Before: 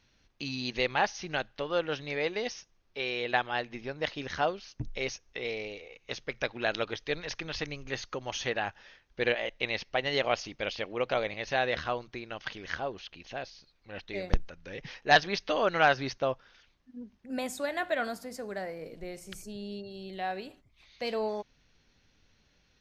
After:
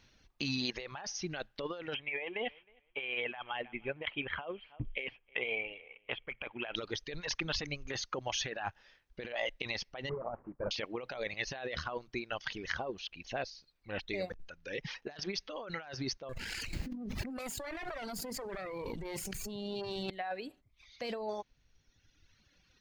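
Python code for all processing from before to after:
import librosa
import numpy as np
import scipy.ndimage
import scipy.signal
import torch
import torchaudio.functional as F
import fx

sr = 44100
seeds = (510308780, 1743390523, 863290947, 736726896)

y = fx.chain(x, sr, fx.cheby_ripple(hz=3300.0, ripple_db=6),
    fx.high_shelf(hz=2000.0, db=11.0),
    fx.echo_feedback(ms=313, feedback_pct=17, wet_db=-23), at=(1.94, 6.76))
y = fx.chain(y, sr, fx.cvsd(bps=16000),
    fx.lowpass(hz=1200.0, slope=24),
    fx.notch(hz=280.0, q=7.1), at=(10.09, 10.71))
y = fx.chain(y, sr, fx.lower_of_two(delay_ms=0.43),
    fx.env_flatten(amount_pct=100), at=(16.29, 20.1))
y = fx.dereverb_blind(y, sr, rt60_s=1.7)
y = fx.over_compress(y, sr, threshold_db=-37.0, ratio=-1.0)
y = F.gain(torch.from_numpy(y), -2.0).numpy()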